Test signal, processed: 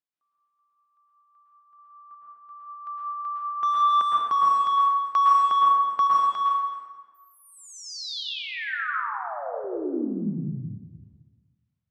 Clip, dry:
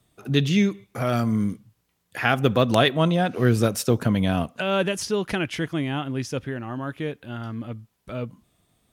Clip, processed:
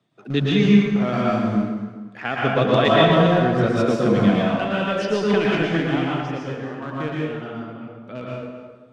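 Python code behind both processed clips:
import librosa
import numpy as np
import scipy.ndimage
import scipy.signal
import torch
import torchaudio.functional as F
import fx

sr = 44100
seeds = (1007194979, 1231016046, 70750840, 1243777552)

p1 = scipy.signal.sosfilt(scipy.signal.butter(4, 140.0, 'highpass', fs=sr, output='sos'), x)
p2 = fx.dereverb_blind(p1, sr, rt60_s=0.59)
p3 = fx.high_shelf(p2, sr, hz=6000.0, db=-2.5)
p4 = np.where(np.abs(p3) >= 10.0 ** (-22.5 / 20.0), p3, 0.0)
p5 = p3 + (p4 * 10.0 ** (-8.5 / 20.0))
p6 = fx.tremolo_random(p5, sr, seeds[0], hz=2.8, depth_pct=55)
p7 = fx.air_absorb(p6, sr, metres=140.0)
p8 = p7 + 10.0 ** (-15.0 / 20.0) * np.pad(p7, (int(263 * sr / 1000.0), 0))[:len(p7)]
y = fx.rev_plate(p8, sr, seeds[1], rt60_s=1.4, hf_ratio=0.65, predelay_ms=100, drr_db=-5.0)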